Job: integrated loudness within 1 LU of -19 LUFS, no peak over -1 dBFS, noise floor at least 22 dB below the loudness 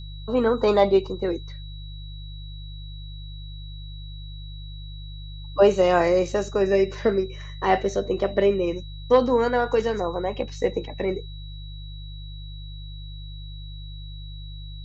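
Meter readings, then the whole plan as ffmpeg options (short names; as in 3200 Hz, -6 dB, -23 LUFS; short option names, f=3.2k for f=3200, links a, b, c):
hum 50 Hz; harmonics up to 150 Hz; hum level -34 dBFS; steady tone 3900 Hz; tone level -45 dBFS; loudness -23.0 LUFS; peak -6.0 dBFS; loudness target -19.0 LUFS
-> -af "bandreject=f=50:t=h:w=4,bandreject=f=100:t=h:w=4,bandreject=f=150:t=h:w=4"
-af "bandreject=f=3.9k:w=30"
-af "volume=4dB"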